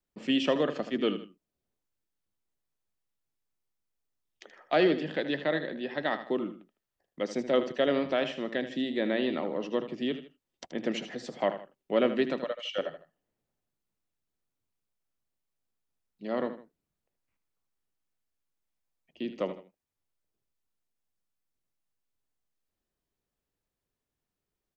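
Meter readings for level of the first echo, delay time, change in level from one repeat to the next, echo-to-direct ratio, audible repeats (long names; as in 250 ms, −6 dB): −11.5 dB, 78 ms, −9.0 dB, −11.0 dB, 2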